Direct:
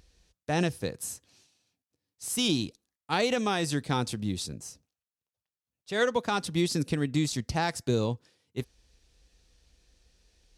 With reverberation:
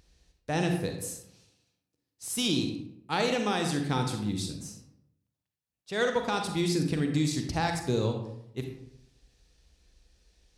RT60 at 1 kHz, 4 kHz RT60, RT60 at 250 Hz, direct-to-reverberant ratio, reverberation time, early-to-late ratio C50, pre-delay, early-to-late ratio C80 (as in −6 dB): 0.70 s, 0.45 s, 0.85 s, 4.0 dB, 0.80 s, 5.5 dB, 36 ms, 8.0 dB